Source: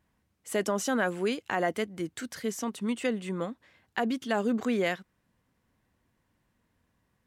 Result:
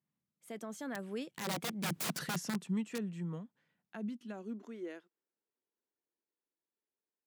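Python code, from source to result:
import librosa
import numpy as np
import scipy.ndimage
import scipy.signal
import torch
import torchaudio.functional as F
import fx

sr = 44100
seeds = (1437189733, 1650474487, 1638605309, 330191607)

y = fx.doppler_pass(x, sr, speed_mps=27, closest_m=1.6, pass_at_s=2.02)
y = (np.mod(10.0 ** (42.0 / 20.0) * y + 1.0, 2.0) - 1.0) / 10.0 ** (42.0 / 20.0)
y = fx.filter_sweep_highpass(y, sr, from_hz=160.0, to_hz=370.0, start_s=3.7, end_s=5.11, q=4.1)
y = y * librosa.db_to_amplitude(10.5)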